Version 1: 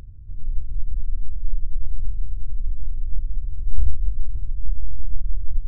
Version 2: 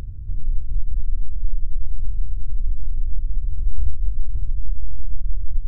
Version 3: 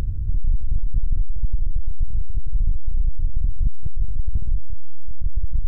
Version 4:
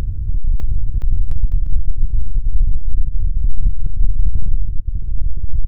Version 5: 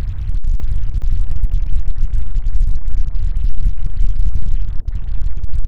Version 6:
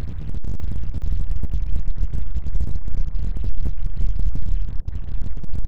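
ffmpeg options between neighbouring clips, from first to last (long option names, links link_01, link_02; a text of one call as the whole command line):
ffmpeg -i in.wav -af "acompressor=threshold=-25dB:ratio=2,volume=8.5dB" out.wav
ffmpeg -i in.wav -af "asoftclip=type=tanh:threshold=-20.5dB,volume=8.5dB" out.wav
ffmpeg -i in.wav -af "aecho=1:1:600|1020|1314|1520|1664:0.631|0.398|0.251|0.158|0.1,volume=3dB" out.wav
ffmpeg -i in.wav -af "acrusher=bits=6:mix=0:aa=0.5" out.wav
ffmpeg -i in.wav -af "aeval=exprs='abs(val(0))':channel_layout=same,volume=-4.5dB" out.wav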